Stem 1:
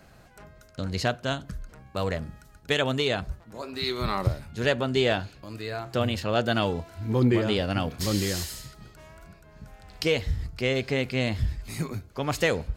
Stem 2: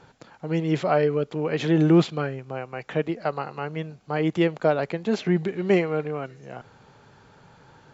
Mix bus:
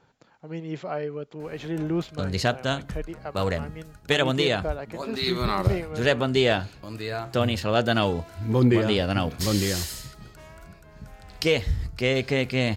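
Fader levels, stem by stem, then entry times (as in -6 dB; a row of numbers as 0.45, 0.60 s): +2.5, -9.5 dB; 1.40, 0.00 s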